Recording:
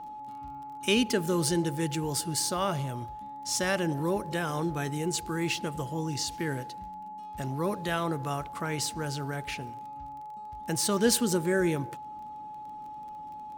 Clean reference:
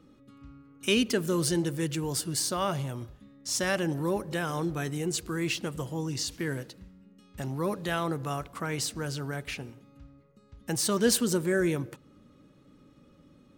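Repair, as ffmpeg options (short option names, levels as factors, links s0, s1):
-af "adeclick=t=4,bandreject=f=850:w=30"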